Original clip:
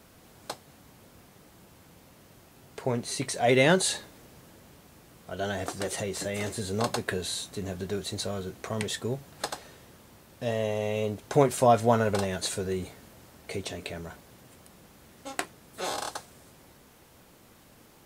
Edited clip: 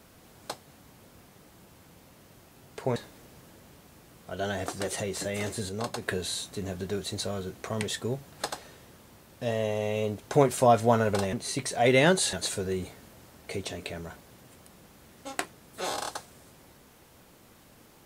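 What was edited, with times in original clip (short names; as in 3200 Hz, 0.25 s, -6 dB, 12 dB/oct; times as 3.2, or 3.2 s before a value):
2.96–3.96 move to 12.33
6.69–7.02 gain -5 dB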